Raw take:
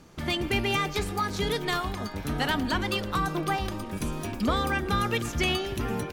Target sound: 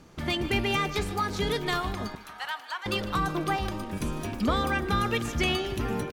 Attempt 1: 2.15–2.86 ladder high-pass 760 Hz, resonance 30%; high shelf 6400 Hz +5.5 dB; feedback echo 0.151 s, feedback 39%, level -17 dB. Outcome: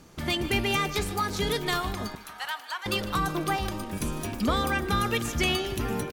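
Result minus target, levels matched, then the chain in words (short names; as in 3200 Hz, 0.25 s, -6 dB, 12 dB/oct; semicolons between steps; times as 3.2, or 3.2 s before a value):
8000 Hz band +4.5 dB
2.15–2.86 ladder high-pass 760 Hz, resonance 30%; high shelf 6400 Hz -3.5 dB; feedback echo 0.151 s, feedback 39%, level -17 dB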